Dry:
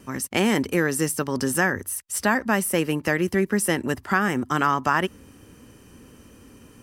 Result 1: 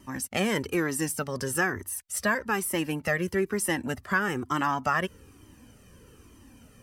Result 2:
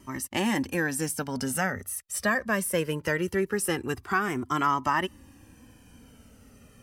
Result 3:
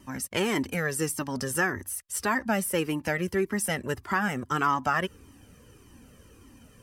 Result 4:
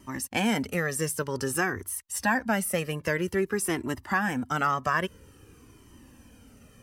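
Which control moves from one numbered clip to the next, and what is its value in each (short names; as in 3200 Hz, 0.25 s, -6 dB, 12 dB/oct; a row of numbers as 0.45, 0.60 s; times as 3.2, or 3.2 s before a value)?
cascading flanger, rate: 1.1, 0.21, 1.7, 0.51 Hz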